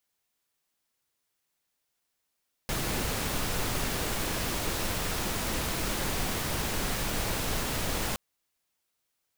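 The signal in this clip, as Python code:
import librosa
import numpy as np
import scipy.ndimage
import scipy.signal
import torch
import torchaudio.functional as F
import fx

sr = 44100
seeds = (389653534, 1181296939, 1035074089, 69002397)

y = fx.noise_colour(sr, seeds[0], length_s=5.47, colour='pink', level_db=-30.5)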